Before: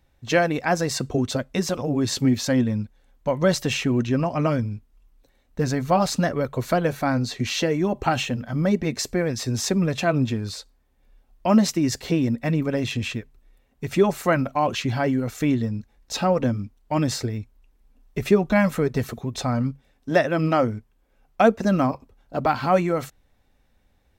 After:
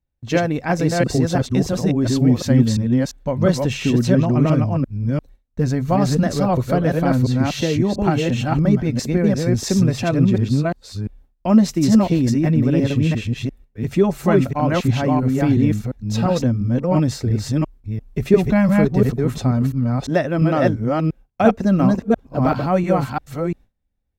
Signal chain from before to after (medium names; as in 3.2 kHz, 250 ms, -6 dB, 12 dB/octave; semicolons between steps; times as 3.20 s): chunks repeated in reverse 346 ms, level -1 dB; gate with hold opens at -46 dBFS; bass shelf 350 Hz +10.5 dB; trim -3 dB